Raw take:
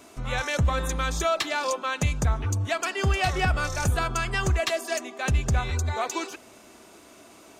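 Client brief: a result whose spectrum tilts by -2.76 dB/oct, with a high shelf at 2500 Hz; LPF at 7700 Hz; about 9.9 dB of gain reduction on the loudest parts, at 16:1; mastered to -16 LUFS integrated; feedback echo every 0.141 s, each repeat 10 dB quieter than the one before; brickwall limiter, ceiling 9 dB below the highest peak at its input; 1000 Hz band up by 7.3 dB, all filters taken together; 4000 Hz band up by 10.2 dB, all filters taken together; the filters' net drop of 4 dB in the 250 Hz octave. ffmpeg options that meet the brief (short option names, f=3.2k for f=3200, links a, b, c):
-af "lowpass=7.7k,equalizer=f=250:t=o:g=-7.5,equalizer=f=1k:t=o:g=8.5,highshelf=f=2.5k:g=7,equalizer=f=4k:t=o:g=6.5,acompressor=threshold=-24dB:ratio=16,alimiter=limit=-21.5dB:level=0:latency=1,aecho=1:1:141|282|423|564:0.316|0.101|0.0324|0.0104,volume=14.5dB"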